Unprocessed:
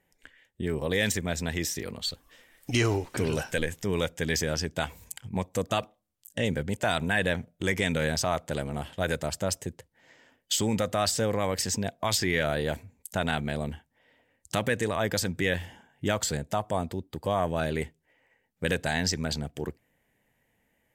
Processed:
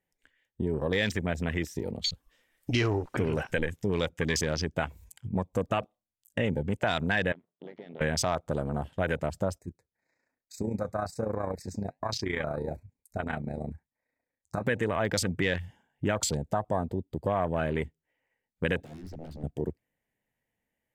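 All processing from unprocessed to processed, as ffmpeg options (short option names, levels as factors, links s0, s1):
-filter_complex "[0:a]asettb=1/sr,asplit=3[s0][s1][s2];[s0]atrim=end=7.324[s3];[s1]atrim=start=7.32:end=8.01,asetpts=PTS-STARTPTS,afade=t=in:d=0.004:c=qsin,afade=t=out:st=0.686:d=0.004:c=qsin,acompressor=threshold=0.0224:ratio=3:attack=3.2:release=140:knee=1:detection=peak,aeval=exprs='max(val(0),0)':c=same,highpass=280,equalizer=f=300:t=q:w=4:g=-8,equalizer=f=540:t=q:w=4:g=-5,equalizer=f=790:t=q:w=4:g=-8,equalizer=f=1500:t=q:w=4:g=-4,equalizer=f=2400:t=q:w=4:g=-8,lowpass=f=3300:w=0.5412,lowpass=f=3300:w=1.3066[s4];[s2]atrim=start=8.006[s5];[s3][s4]acrossfade=d=0.004:c1=hsin:c2=qsin[s6];[s6][s5]acrossfade=d=0.004:c1=qsin:c2=hsin,asettb=1/sr,asplit=3[s7][s8][s9];[s7]atrim=end=9.584[s10];[s8]atrim=start=9.58:end=14.66,asetpts=PTS-STARTPTS,afade=t=in:d=0.004:c=qsin,afade=t=out:st=5.076:d=0.004:c=qsin,tremolo=f=29:d=0.621,asuperstop=centerf=3100:order=20:qfactor=2.7,flanger=delay=2.6:depth=8.3:regen=-69:speed=1.1:shape=sinusoidal[s11];[s9]atrim=start=14.656[s12];[s10][s11]acrossfade=d=0.004:c1=hsin:c2=qsin[s13];[s13][s12]acrossfade=d=0.004:c1=qsin:c2=hsin,asettb=1/sr,asplit=3[s14][s15][s16];[s14]atrim=end=18.834[s17];[s15]atrim=start=18.83:end=19.44,asetpts=PTS-STARTPTS,afade=t=in:d=0.004:c=qsin,afade=t=out:st=0.606:d=0.004:c=qsin,equalizer=f=9200:t=o:w=0.92:g=-7.5,acrossover=split=560|1300[s18][s19][s20];[s18]acompressor=threshold=0.0141:ratio=4[s21];[s19]acompressor=threshold=0.00447:ratio=4[s22];[s20]acompressor=threshold=0.00631:ratio=4[s23];[s21][s22][s23]amix=inputs=3:normalize=0,aeval=exprs='0.0126*(abs(mod(val(0)/0.0126+3,4)-2)-1)':c=same[s24];[s16]atrim=start=19.436[s25];[s17][s24]acrossfade=d=0.004:c1=hsin:c2=qsin[s26];[s26][s25]acrossfade=d=0.004:c1=qsin:c2=hsin,afwtdn=0.0141,acompressor=threshold=0.0282:ratio=2,volume=1.58"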